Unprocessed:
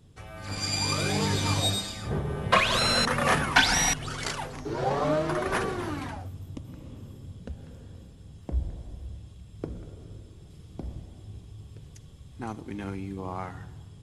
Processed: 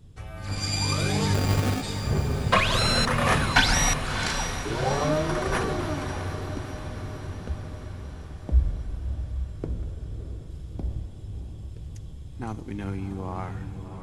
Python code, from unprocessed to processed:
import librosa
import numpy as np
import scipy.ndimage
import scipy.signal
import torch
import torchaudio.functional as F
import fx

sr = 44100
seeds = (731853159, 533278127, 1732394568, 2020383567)

y = fx.low_shelf(x, sr, hz=100.0, db=11.5)
y = fx.sample_hold(y, sr, seeds[0], rate_hz=1000.0, jitter_pct=0, at=(1.33, 1.82), fade=0.02)
y = fx.echo_diffused(y, sr, ms=663, feedback_pct=57, wet_db=-9.5)